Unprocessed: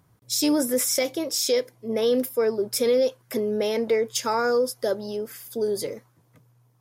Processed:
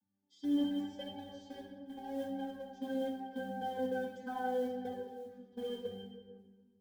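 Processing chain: vocoder on a note that slides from D4, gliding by -4 st; in parallel at -11.5 dB: bit crusher 4-bit; on the sum: treble shelf 2.9 kHz +9.5 dB; pitch-class resonator G, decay 0.68 s; modulation noise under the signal 28 dB; simulated room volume 1400 m³, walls mixed, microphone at 1.9 m; flange 0.83 Hz, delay 1.2 ms, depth 2.3 ms, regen +36%; trim +15 dB

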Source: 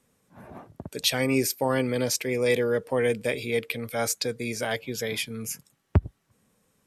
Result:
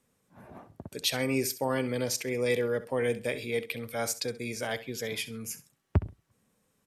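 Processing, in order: feedback delay 66 ms, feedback 23%, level -15 dB; trim -4.5 dB

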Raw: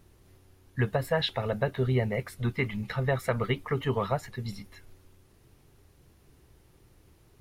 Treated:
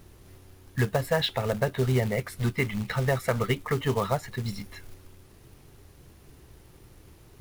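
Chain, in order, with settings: in parallel at +2 dB: compression 8:1, threshold -38 dBFS, peak gain reduction 16.5 dB; on the sum: short-mantissa float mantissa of 2-bit

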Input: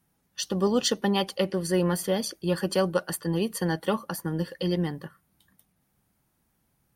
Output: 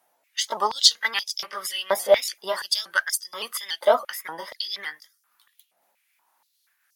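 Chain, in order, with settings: sawtooth pitch modulation +2.5 st, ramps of 285 ms; step-sequenced high-pass 4.2 Hz 660–5600 Hz; trim +5 dB

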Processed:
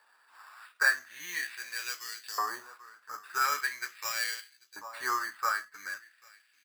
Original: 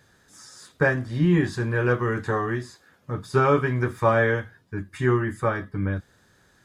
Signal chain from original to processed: distance through air 58 m; on a send: delay 790 ms -21 dB; on the sum: sample-and-hold 7×; LFO high-pass saw up 0.42 Hz 910–3300 Hz; 2.49–3.41 s: dynamic bell 2.6 kHz, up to -5 dB, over -45 dBFS, Q 0.88; trim -5.5 dB

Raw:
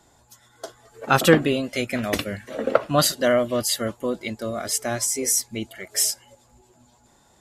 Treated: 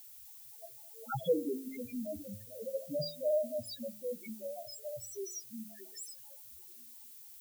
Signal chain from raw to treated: loudest bins only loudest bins 1; added noise violet -48 dBFS; de-hum 53.04 Hz, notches 12; trim -5 dB

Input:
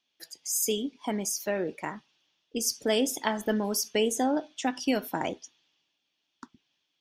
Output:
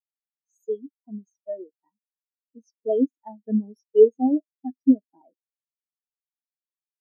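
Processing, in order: spectral contrast expander 4:1; trim +6 dB

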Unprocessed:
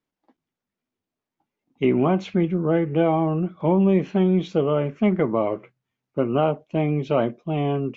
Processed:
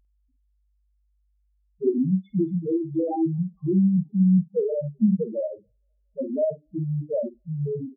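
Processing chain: treble shelf 2.2 kHz -6 dB; de-hum 99.51 Hz, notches 4; mains buzz 50 Hz, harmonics 30, -46 dBFS -2 dB/octave; in parallel at -6 dB: bit crusher 4-bit; on the sum: loudest bins only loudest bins 1; doubling 49 ms -11 dB; on a send: feedback echo behind a high-pass 231 ms, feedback 68%, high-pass 3 kHz, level -21.5 dB; on the sum: upward expansion 1.5:1, over -39 dBFS; trim +4 dB

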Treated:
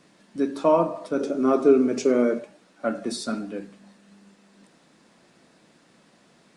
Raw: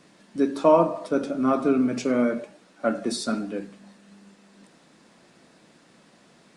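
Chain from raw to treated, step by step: 1.19–2.39 s: fifteen-band graphic EQ 100 Hz -10 dB, 400 Hz +11 dB, 6.3 kHz +6 dB; trim -2 dB

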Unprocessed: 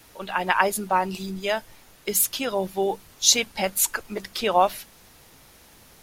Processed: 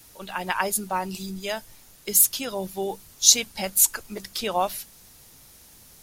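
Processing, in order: tone controls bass +5 dB, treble +10 dB; trim -5.5 dB

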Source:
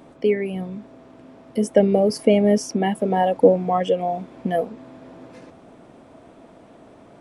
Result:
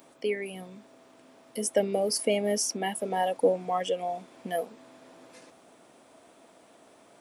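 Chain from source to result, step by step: RIAA curve recording; trim -6.5 dB

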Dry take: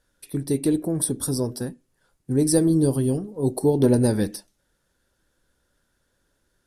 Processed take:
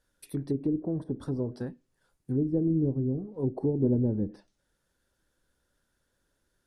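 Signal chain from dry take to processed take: low-pass that closes with the level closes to 380 Hz, closed at -18.5 dBFS; trim -5.5 dB

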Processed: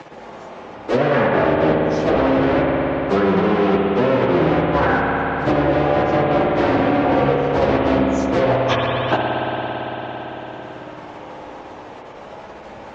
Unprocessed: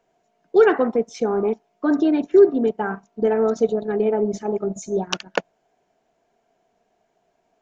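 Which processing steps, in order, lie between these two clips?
cycle switcher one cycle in 3, inverted; Bessel low-pass 4.3 kHz, order 8; low-pass that closes with the level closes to 2.8 kHz, closed at -17.5 dBFS; high-pass 45 Hz 12 dB/octave; in parallel at +2 dB: peak limiter -12.5 dBFS, peak gain reduction 9 dB; on the sum: level held to a coarse grid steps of 21 dB; plain phase-vocoder stretch 1.7×; spring tank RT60 2.6 s, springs 56 ms, chirp 75 ms, DRR -1 dB; three bands compressed up and down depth 70%; trim +5.5 dB

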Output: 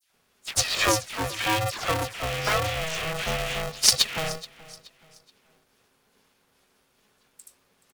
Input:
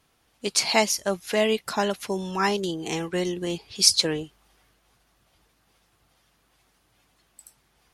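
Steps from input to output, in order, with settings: rattle on loud lows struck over -41 dBFS, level -19 dBFS; high-pass 55 Hz; comb 1 ms, depth 45%; phase dispersion lows, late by 139 ms, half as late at 1.6 kHz; on a send: feedback delay 426 ms, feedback 35%, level -19.5 dB; on the sum: polarity switched at an audio rate 320 Hz; trim -1.5 dB

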